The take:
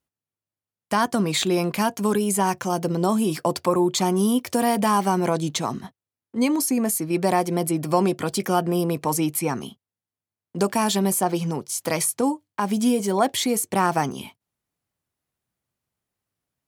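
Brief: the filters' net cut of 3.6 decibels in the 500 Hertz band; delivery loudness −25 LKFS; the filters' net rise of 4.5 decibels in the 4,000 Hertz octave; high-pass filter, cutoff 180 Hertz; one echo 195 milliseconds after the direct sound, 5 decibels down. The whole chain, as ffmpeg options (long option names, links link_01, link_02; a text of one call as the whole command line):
ffmpeg -i in.wav -af "highpass=180,equalizer=frequency=500:width_type=o:gain=-5,equalizer=frequency=4000:width_type=o:gain=5.5,aecho=1:1:195:0.562,volume=-2dB" out.wav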